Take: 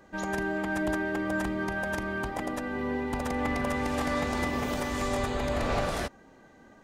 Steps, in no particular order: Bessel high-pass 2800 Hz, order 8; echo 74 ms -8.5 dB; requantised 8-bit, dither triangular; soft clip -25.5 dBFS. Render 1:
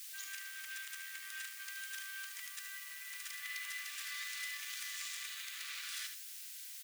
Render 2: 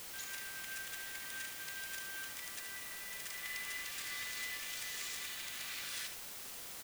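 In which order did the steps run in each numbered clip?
echo > requantised > soft clip > Bessel high-pass; soft clip > Bessel high-pass > requantised > echo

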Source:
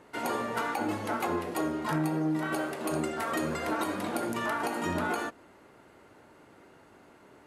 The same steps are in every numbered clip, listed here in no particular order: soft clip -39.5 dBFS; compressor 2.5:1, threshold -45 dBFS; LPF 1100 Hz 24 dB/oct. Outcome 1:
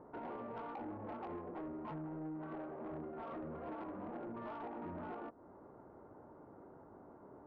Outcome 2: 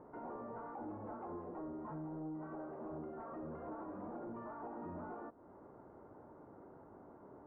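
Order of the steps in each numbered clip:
LPF > compressor > soft clip; compressor > soft clip > LPF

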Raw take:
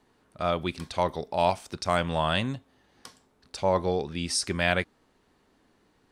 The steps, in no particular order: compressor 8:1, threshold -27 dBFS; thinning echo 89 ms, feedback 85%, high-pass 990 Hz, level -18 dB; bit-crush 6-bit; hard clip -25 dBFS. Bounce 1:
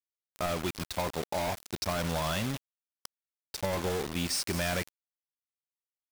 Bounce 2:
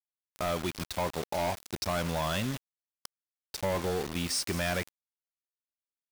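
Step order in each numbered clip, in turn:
hard clip > thinning echo > compressor > bit-crush; hard clip > thinning echo > bit-crush > compressor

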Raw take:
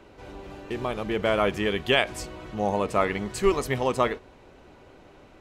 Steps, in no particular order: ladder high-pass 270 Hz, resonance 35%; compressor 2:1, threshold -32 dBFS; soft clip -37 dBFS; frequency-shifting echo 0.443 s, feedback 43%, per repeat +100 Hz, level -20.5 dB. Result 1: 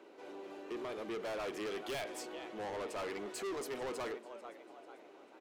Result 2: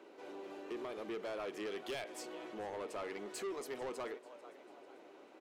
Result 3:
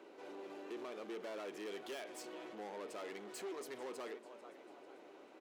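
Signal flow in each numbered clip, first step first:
frequency-shifting echo > ladder high-pass > soft clip > compressor; compressor > ladder high-pass > frequency-shifting echo > soft clip; compressor > frequency-shifting echo > soft clip > ladder high-pass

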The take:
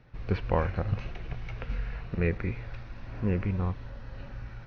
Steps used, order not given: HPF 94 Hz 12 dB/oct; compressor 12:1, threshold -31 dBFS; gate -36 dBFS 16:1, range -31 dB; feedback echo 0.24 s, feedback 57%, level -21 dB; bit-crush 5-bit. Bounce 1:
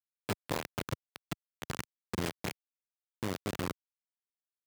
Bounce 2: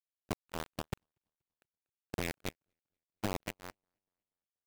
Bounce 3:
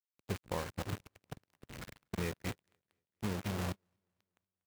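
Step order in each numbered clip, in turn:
compressor > gate > feedback echo > bit-crush > HPF; compressor > HPF > bit-crush > feedback echo > gate; bit-crush > feedback echo > compressor > HPF > gate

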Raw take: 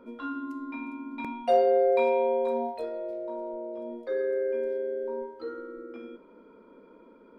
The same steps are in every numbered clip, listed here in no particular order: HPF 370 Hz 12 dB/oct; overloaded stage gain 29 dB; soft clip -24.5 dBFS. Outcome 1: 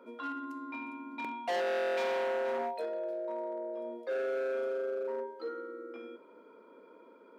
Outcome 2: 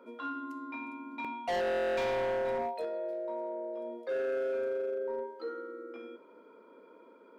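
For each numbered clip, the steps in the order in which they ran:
soft clip > overloaded stage > HPF; HPF > soft clip > overloaded stage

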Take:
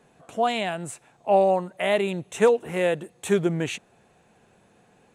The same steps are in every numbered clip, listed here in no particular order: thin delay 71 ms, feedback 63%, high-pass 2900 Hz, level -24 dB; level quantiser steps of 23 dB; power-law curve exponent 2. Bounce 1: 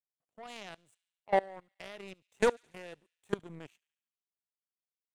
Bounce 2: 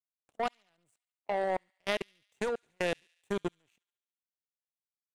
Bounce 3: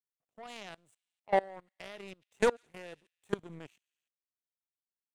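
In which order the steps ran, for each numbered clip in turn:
power-law curve > level quantiser > thin delay; level quantiser > power-law curve > thin delay; power-law curve > thin delay > level quantiser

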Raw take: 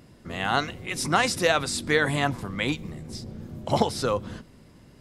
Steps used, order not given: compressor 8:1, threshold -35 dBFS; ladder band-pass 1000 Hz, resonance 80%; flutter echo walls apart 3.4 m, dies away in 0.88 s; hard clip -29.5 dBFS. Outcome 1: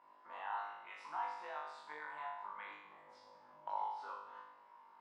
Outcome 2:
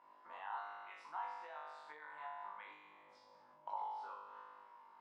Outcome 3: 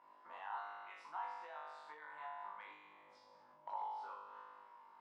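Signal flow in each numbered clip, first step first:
compressor > ladder band-pass > hard clip > flutter echo; flutter echo > compressor > ladder band-pass > hard clip; flutter echo > compressor > hard clip > ladder band-pass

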